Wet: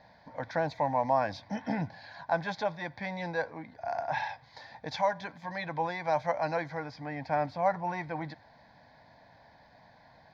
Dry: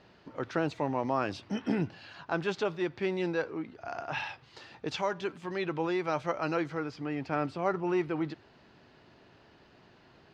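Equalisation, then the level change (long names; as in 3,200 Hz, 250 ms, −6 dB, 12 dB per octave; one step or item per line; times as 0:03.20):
parametric band 800 Hz +7 dB 2.5 octaves
phaser with its sweep stopped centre 1,900 Hz, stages 8
0.0 dB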